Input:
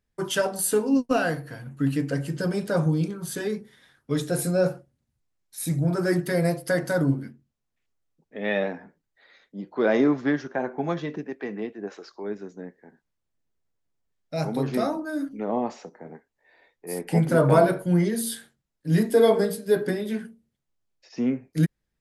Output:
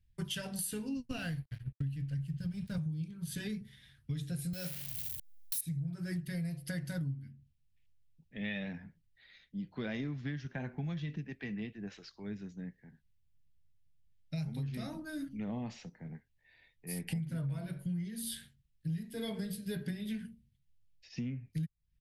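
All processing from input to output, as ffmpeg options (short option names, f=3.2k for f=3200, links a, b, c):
-filter_complex "[0:a]asettb=1/sr,asplit=3[a][b][c];[a]atrim=end=1.184[d];[b]atrim=start=1.18:end=2.78,asetpts=PTS-STARTPTS,afade=t=in:d=0.004:c=qsin,afade=t=out:st=1.596:d=0.004:c=qsin,agate=range=-33dB:threshold=-34dB:ratio=3:release=100:detection=peak,asubboost=boost=9:cutoff=150,aeval=exprs='sgn(val(0))*max(abs(val(0))-0.00531,0)':c=same[e];[c]atrim=start=2.776[f];[d][e]acrossfade=d=0.004:c1=hsin:c2=qsin[g];[g][f]acrossfade=d=0.004:c1=qsin:c2=hsin,asettb=1/sr,asplit=3[h][i][j];[h]atrim=end=4.534[k];[i]atrim=start=4.53:end=5.61,asetpts=PTS-STARTPTS,afade=t=in:d=0.004:c=qsin,afade=t=out:st=1.076:d=0.004:c=qsin,aeval=exprs='val(0)+0.5*0.02*sgn(val(0))':c=same,aemphasis=mode=production:type=riaa[l];[j]atrim=start=5.606[m];[k][l]acrossfade=d=0.004:c1=hsin:c2=qsin[n];[n][m]acrossfade=d=0.004:c1=qsin:c2=hsin,firequalizer=gain_entry='entry(110,0);entry(250,-18);entry(380,-27);entry(1200,-26);entry(1800,-16);entry(2800,-10);entry(7000,-18);entry(10000,-14)':delay=0.05:min_phase=1,acompressor=threshold=-45dB:ratio=10,volume=10.5dB"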